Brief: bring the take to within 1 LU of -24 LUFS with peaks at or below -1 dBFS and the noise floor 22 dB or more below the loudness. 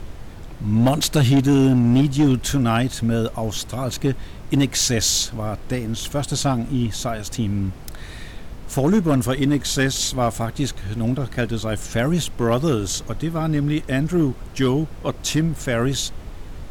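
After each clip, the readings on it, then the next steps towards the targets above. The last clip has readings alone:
clipped samples 1.2%; clipping level -11.0 dBFS; noise floor -36 dBFS; noise floor target -43 dBFS; loudness -21.0 LUFS; peak level -11.0 dBFS; loudness target -24.0 LUFS
-> clip repair -11 dBFS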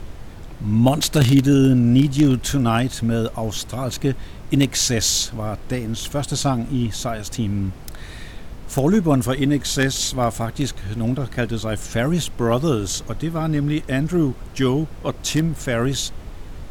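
clipped samples 0.0%; noise floor -36 dBFS; noise floor target -43 dBFS
-> noise print and reduce 7 dB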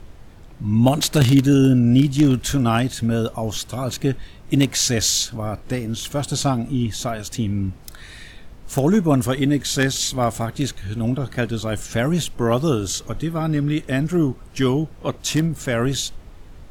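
noise floor -42 dBFS; noise floor target -43 dBFS
-> noise print and reduce 6 dB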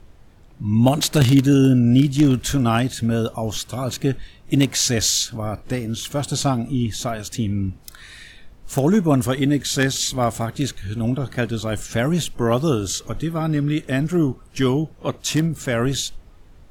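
noise floor -47 dBFS; loudness -20.5 LUFS; peak level -2.0 dBFS; loudness target -24.0 LUFS
-> trim -3.5 dB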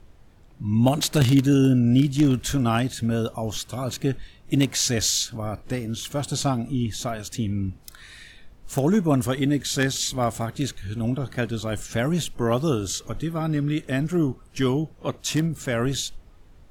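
loudness -24.0 LUFS; peak level -5.5 dBFS; noise floor -51 dBFS

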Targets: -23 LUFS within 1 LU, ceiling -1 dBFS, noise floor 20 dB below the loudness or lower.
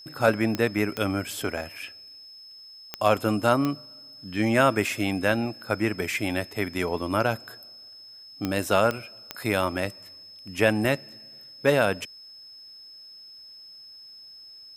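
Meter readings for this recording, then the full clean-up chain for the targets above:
clicks found 7; steady tone 5.2 kHz; tone level -44 dBFS; loudness -25.5 LUFS; peak level -6.0 dBFS; loudness target -23.0 LUFS
-> de-click; band-stop 5.2 kHz, Q 30; trim +2.5 dB

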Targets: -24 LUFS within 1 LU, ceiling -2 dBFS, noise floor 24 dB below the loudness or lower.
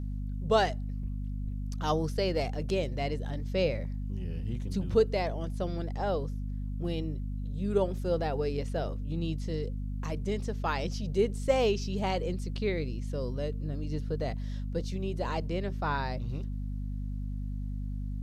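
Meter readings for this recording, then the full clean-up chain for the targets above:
hum 50 Hz; highest harmonic 250 Hz; hum level -32 dBFS; loudness -32.5 LUFS; peak level -12.5 dBFS; loudness target -24.0 LUFS
-> hum notches 50/100/150/200/250 Hz; trim +8.5 dB

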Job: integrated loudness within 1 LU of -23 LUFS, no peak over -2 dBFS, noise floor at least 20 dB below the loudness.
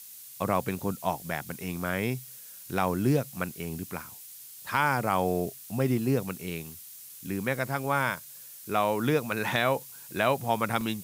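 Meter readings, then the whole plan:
dropouts 1; longest dropout 1.3 ms; noise floor -47 dBFS; noise floor target -50 dBFS; loudness -29.5 LUFS; peak level -11.5 dBFS; loudness target -23.0 LUFS
-> interpolate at 10.81 s, 1.3 ms; noise print and reduce 6 dB; trim +6.5 dB

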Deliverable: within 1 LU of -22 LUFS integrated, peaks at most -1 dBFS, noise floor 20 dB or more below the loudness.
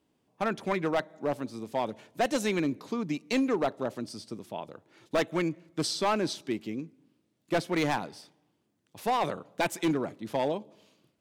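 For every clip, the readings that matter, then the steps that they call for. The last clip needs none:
clipped samples 1.2%; clipping level -21.0 dBFS; loudness -31.0 LUFS; peak level -21.0 dBFS; loudness target -22.0 LUFS
-> clip repair -21 dBFS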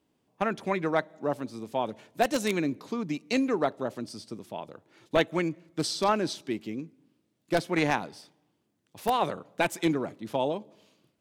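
clipped samples 0.0%; loudness -30.0 LUFS; peak level -12.0 dBFS; loudness target -22.0 LUFS
-> trim +8 dB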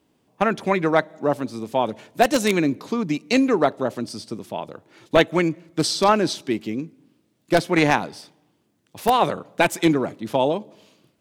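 loudness -22.0 LUFS; peak level -4.0 dBFS; noise floor -67 dBFS

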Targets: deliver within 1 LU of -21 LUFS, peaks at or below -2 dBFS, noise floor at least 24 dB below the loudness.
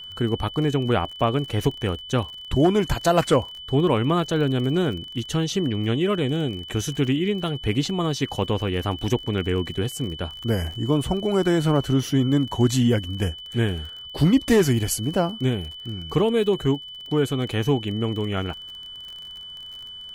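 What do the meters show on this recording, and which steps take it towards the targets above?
tick rate 37 per s; steady tone 3 kHz; tone level -36 dBFS; loudness -23.5 LUFS; peak level -8.0 dBFS; loudness target -21.0 LUFS
-> de-click; band-stop 3 kHz, Q 30; trim +2.5 dB

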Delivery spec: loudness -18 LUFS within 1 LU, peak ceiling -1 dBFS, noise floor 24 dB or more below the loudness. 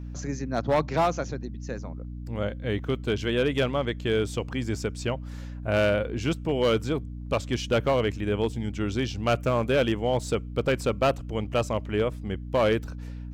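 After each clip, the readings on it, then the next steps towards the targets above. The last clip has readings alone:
clipped samples 1.1%; clipping level -16.5 dBFS; hum 60 Hz; highest harmonic 300 Hz; hum level -34 dBFS; loudness -27.5 LUFS; peak level -16.5 dBFS; loudness target -18.0 LUFS
-> clip repair -16.5 dBFS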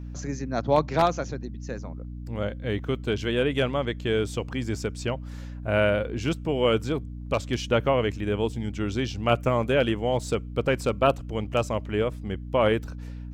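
clipped samples 0.0%; hum 60 Hz; highest harmonic 300 Hz; hum level -34 dBFS
-> de-hum 60 Hz, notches 5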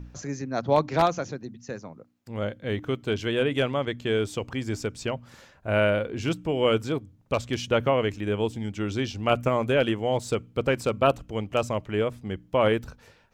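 hum not found; loudness -26.5 LUFS; peak level -7.0 dBFS; loudness target -18.0 LUFS
-> trim +8.5 dB; peak limiter -1 dBFS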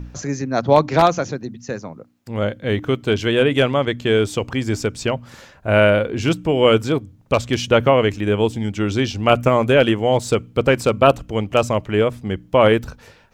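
loudness -18.5 LUFS; peak level -1.0 dBFS; noise floor -50 dBFS

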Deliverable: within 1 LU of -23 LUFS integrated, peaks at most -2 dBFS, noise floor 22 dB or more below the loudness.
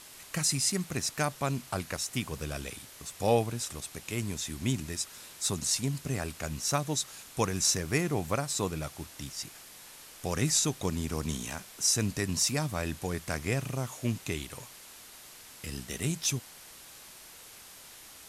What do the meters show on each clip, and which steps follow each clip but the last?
noise floor -51 dBFS; noise floor target -54 dBFS; loudness -31.5 LUFS; peak level -13.0 dBFS; loudness target -23.0 LUFS
-> noise reduction 6 dB, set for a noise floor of -51 dBFS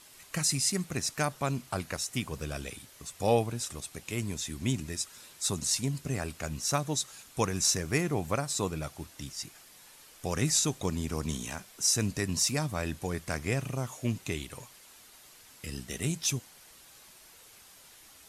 noise floor -55 dBFS; loudness -31.5 LUFS; peak level -13.0 dBFS; loudness target -23.0 LUFS
-> trim +8.5 dB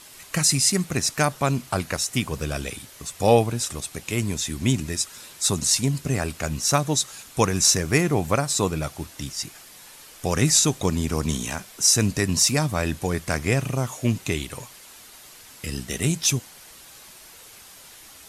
loudness -23.0 LUFS; peak level -4.5 dBFS; noise floor -47 dBFS

